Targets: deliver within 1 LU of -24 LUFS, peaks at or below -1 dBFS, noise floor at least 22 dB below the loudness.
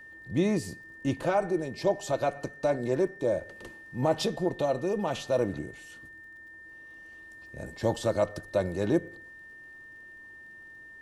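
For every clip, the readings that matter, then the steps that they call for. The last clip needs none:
ticks 29/s; steady tone 1800 Hz; tone level -46 dBFS; loudness -29.5 LUFS; peak -12.5 dBFS; loudness target -24.0 LUFS
-> de-click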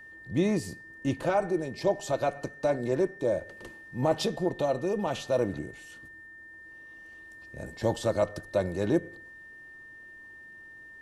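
ticks 0.091/s; steady tone 1800 Hz; tone level -46 dBFS
-> notch 1800 Hz, Q 30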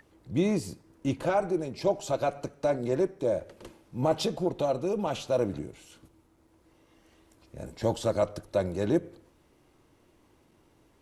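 steady tone none; loudness -29.5 LUFS; peak -13.0 dBFS; loudness target -24.0 LUFS
-> gain +5.5 dB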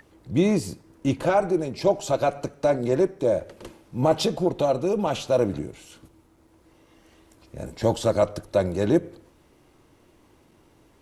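loudness -24.0 LUFS; peak -7.5 dBFS; noise floor -59 dBFS

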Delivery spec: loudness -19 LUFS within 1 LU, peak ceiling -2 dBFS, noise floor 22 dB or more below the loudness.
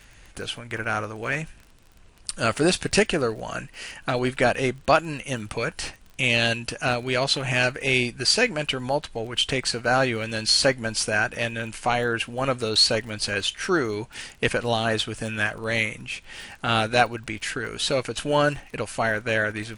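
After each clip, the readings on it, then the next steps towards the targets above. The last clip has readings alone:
ticks 27/s; loudness -24.0 LUFS; peak -4.0 dBFS; loudness target -19.0 LUFS
-> de-click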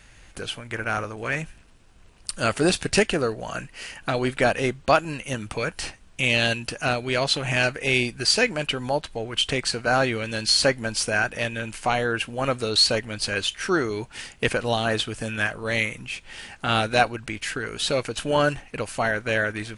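ticks 0.051/s; loudness -24.0 LUFS; peak -4.0 dBFS; loudness target -19.0 LUFS
-> gain +5 dB; limiter -2 dBFS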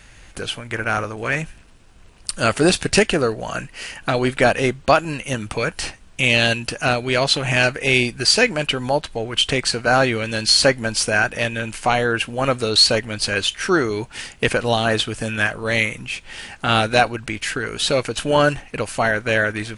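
loudness -19.0 LUFS; peak -2.0 dBFS; noise floor -46 dBFS

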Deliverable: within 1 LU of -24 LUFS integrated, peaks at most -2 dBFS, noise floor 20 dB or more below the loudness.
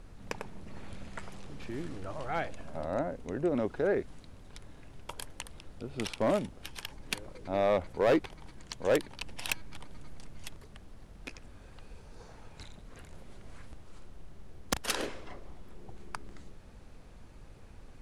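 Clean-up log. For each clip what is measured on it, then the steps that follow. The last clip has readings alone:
clipped 0.3%; flat tops at -20.0 dBFS; noise floor -52 dBFS; noise floor target -55 dBFS; loudness -34.5 LUFS; peak -20.0 dBFS; loudness target -24.0 LUFS
-> clip repair -20 dBFS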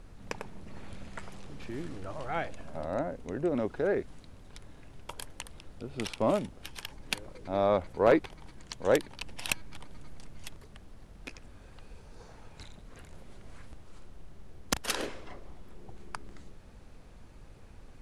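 clipped 0.0%; noise floor -52 dBFS; noise floor target -53 dBFS
-> noise print and reduce 6 dB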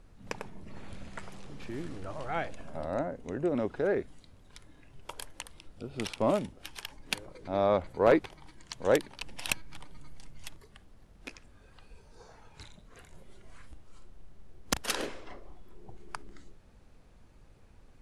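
noise floor -57 dBFS; loudness -32.5 LUFS; peak -11.0 dBFS; loudness target -24.0 LUFS
-> gain +8.5 dB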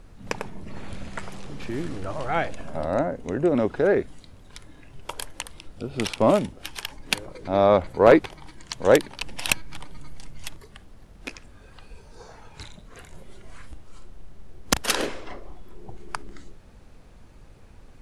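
loudness -24.0 LUFS; peak -2.5 dBFS; noise floor -49 dBFS

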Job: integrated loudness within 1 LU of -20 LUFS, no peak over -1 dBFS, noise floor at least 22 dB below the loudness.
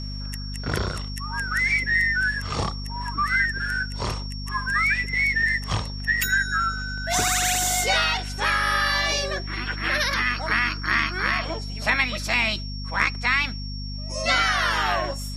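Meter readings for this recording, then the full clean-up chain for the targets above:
hum 50 Hz; harmonics up to 250 Hz; hum level -30 dBFS; steady tone 5500 Hz; tone level -37 dBFS; loudness -23.0 LUFS; peak -6.0 dBFS; loudness target -20.0 LUFS
-> notches 50/100/150/200/250 Hz; notch 5500 Hz, Q 30; gain +3 dB

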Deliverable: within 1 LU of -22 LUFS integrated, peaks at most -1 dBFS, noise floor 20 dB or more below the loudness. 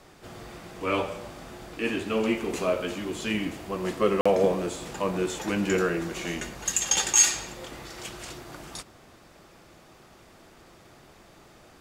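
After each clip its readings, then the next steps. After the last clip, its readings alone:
dropouts 1; longest dropout 45 ms; loudness -26.5 LUFS; peak -6.5 dBFS; loudness target -22.0 LUFS
-> interpolate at 4.21, 45 ms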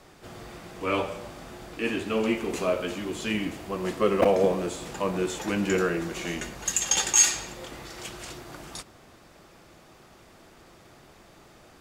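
dropouts 0; loudness -26.0 LUFS; peak -6.5 dBFS; loudness target -22.0 LUFS
-> gain +4 dB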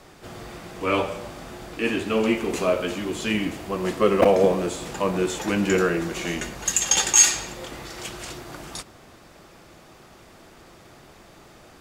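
loudness -22.0 LUFS; peak -2.5 dBFS; noise floor -50 dBFS

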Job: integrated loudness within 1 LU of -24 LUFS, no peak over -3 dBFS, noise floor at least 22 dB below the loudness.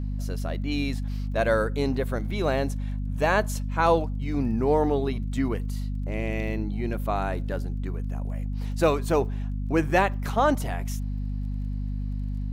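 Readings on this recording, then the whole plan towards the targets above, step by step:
ticks 22/s; hum 50 Hz; harmonics up to 250 Hz; hum level -27 dBFS; loudness -27.0 LUFS; peak -8.0 dBFS; loudness target -24.0 LUFS
-> de-click; notches 50/100/150/200/250 Hz; gain +3 dB

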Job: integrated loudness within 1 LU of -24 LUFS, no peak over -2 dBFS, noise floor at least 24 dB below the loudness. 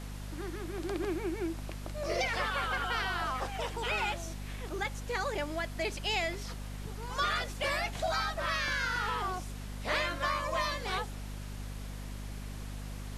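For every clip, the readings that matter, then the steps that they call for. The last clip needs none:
hum 50 Hz; harmonics up to 250 Hz; hum level -38 dBFS; noise floor -42 dBFS; noise floor target -59 dBFS; loudness -34.5 LUFS; peak -18.0 dBFS; loudness target -24.0 LUFS
-> de-hum 50 Hz, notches 5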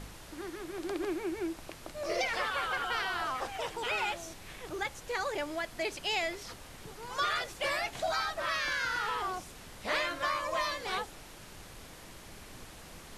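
hum none; noise floor -50 dBFS; noise floor target -58 dBFS
-> noise print and reduce 8 dB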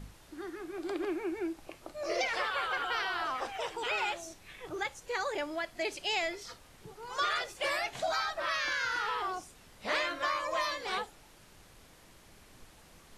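noise floor -58 dBFS; loudness -34.0 LUFS; peak -18.5 dBFS; loudness target -24.0 LUFS
-> gain +10 dB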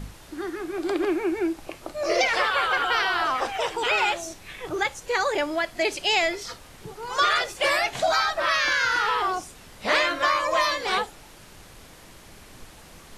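loudness -24.0 LUFS; peak -8.5 dBFS; noise floor -48 dBFS

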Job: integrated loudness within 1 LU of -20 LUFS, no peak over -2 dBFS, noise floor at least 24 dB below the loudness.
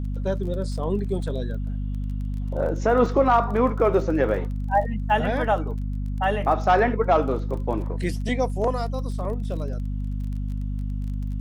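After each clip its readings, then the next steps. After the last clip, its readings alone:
ticks 25/s; hum 50 Hz; harmonics up to 250 Hz; hum level -25 dBFS; loudness -24.5 LUFS; peak -7.5 dBFS; loudness target -20.0 LUFS
-> de-click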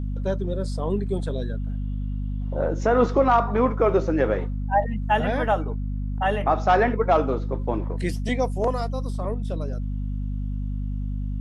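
ticks 0/s; hum 50 Hz; harmonics up to 250 Hz; hum level -25 dBFS
-> de-hum 50 Hz, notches 5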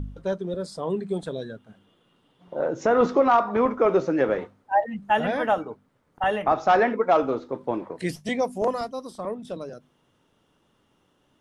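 hum none; loudness -24.5 LUFS; peak -9.0 dBFS; loudness target -20.0 LUFS
-> gain +4.5 dB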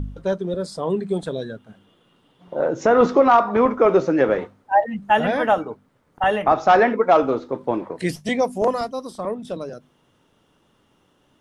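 loudness -20.0 LUFS; peak -4.5 dBFS; noise floor -63 dBFS

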